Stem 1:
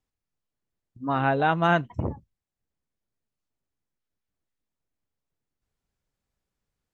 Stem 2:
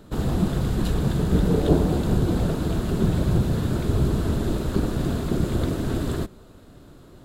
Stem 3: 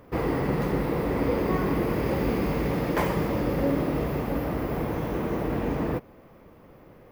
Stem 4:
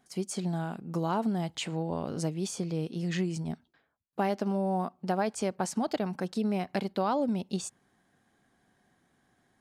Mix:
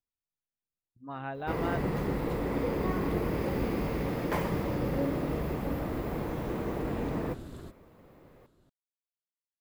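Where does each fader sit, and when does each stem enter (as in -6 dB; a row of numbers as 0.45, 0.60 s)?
-14.5 dB, -18.5 dB, -5.5 dB, off; 0.00 s, 1.45 s, 1.35 s, off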